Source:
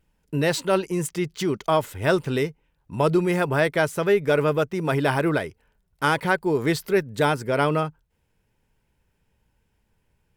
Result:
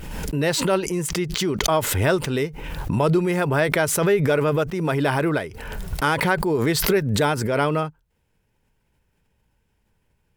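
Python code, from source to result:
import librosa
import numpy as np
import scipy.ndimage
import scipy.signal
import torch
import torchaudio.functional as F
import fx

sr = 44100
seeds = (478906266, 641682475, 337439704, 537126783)

y = fx.pre_swell(x, sr, db_per_s=37.0)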